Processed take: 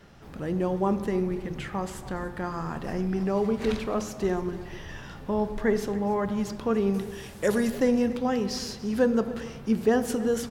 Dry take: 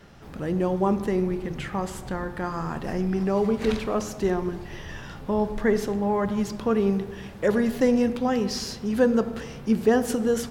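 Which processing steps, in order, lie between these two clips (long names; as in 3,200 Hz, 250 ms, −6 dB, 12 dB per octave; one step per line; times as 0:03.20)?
0:06.94–0:07.70: parametric band 10,000 Hz +14.5 dB 1.8 octaves
single-tap delay 287 ms −18 dB
level −2.5 dB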